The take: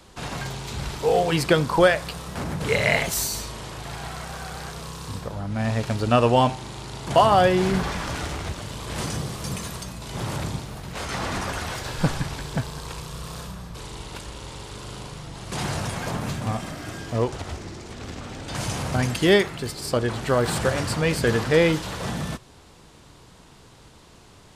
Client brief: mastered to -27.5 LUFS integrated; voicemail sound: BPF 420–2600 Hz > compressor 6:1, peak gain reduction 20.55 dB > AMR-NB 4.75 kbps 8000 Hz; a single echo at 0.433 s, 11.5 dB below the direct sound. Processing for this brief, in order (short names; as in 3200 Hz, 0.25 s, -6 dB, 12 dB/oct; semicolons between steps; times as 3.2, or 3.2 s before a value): BPF 420–2600 Hz; echo 0.433 s -11.5 dB; compressor 6:1, threshold -35 dBFS; gain +15.5 dB; AMR-NB 4.75 kbps 8000 Hz